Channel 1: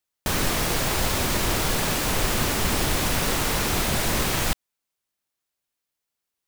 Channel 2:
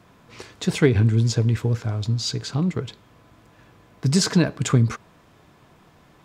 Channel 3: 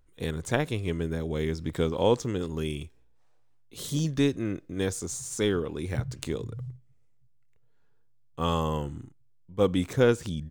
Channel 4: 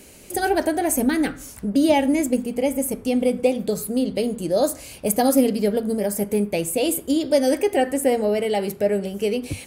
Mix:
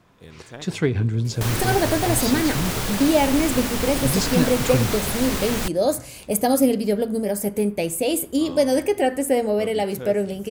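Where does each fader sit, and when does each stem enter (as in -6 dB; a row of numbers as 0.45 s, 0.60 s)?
-2.5 dB, -4.0 dB, -13.0 dB, -0.5 dB; 1.15 s, 0.00 s, 0.00 s, 1.25 s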